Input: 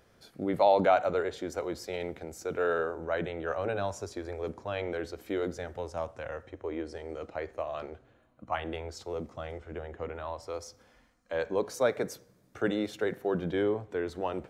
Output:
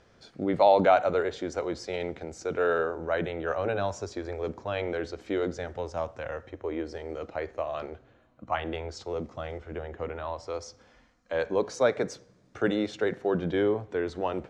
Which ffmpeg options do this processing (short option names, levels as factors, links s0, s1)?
-af "lowpass=f=7100:w=0.5412,lowpass=f=7100:w=1.3066,volume=1.41"